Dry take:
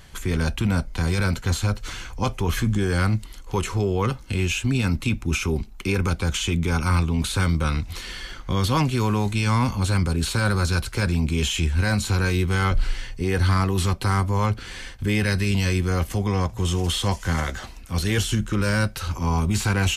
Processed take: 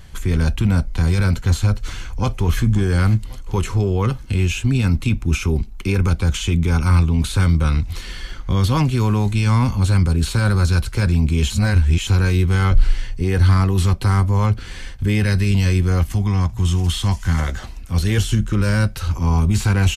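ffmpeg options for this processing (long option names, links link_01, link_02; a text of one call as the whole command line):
ffmpeg -i in.wav -filter_complex "[0:a]asplit=2[link_01][link_02];[link_02]afade=type=in:start_time=1.65:duration=0.01,afade=type=out:start_time=2.63:duration=0.01,aecho=0:1:540|1080|1620|2160|2700:0.133352|0.0733437|0.040339|0.0221865|0.0122026[link_03];[link_01][link_03]amix=inputs=2:normalize=0,asettb=1/sr,asplit=3[link_04][link_05][link_06];[link_04]atrim=end=16.014[link_07];[link_05]atrim=start=16.01:end=17.4,asetpts=PTS-STARTPTS,afade=type=in:duration=0.004:curve=qsin,afade=type=out:start_time=1.386:duration=0.004:curve=qsin,equalizer=frequency=490:width=1.9:gain=-10[link_08];[link_06]atrim=start=17.396[link_09];[link_07][link_08]acrossfade=duration=0.004:curve1=hsin:curve2=qsin[link_10];[link_10][link_09]acrossfade=duration=0.004:curve1=qsin:curve2=hsin,asplit=3[link_11][link_12][link_13];[link_11]atrim=end=11.502[link_14];[link_12]atrim=start=11.498:end=12.072,asetpts=PTS-STARTPTS,areverse[link_15];[link_13]atrim=start=12.068[link_16];[link_14][link_15]acrossfade=duration=0.004:curve1=hsin:curve2=hsin[link_17];[link_17][link_16]acrossfade=duration=0.004:curve1=hsin:curve2=hsin,lowshelf=frequency=170:gain=9" out.wav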